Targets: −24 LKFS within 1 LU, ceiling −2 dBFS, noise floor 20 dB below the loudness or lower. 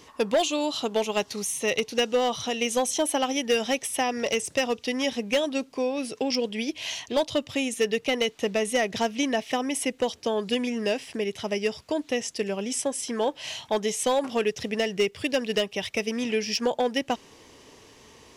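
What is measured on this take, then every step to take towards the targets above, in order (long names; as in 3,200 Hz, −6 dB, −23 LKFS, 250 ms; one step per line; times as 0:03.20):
share of clipped samples 0.6%; peaks flattened at −16.5 dBFS; integrated loudness −27.0 LKFS; sample peak −16.5 dBFS; target loudness −24.0 LKFS
→ clipped peaks rebuilt −16.5 dBFS
level +3 dB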